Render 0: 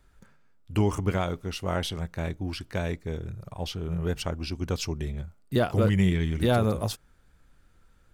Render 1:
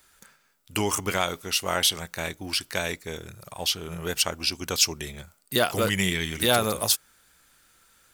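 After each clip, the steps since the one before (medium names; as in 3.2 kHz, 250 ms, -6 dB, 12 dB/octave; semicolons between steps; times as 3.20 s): tilt EQ +4 dB/octave; trim +4.5 dB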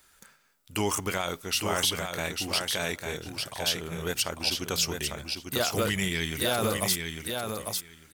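peak limiter -14 dBFS, peak gain reduction 8 dB; on a send: feedback delay 849 ms, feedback 15%, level -5 dB; on the sum: trim -1 dB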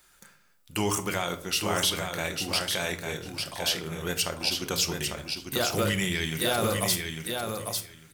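reverberation RT60 0.55 s, pre-delay 6 ms, DRR 8 dB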